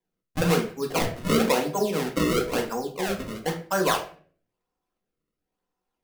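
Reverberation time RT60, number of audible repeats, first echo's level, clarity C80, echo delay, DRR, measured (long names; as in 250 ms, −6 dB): 0.45 s, no echo audible, no echo audible, 14.0 dB, no echo audible, 1.0 dB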